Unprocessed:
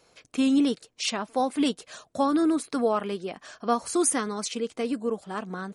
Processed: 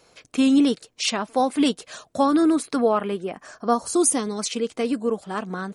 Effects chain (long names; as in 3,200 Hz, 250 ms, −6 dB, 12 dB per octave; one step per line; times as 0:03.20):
0:02.75–0:04.38: parametric band 8,100 Hz → 1,200 Hz −12.5 dB 0.86 octaves
level +4.5 dB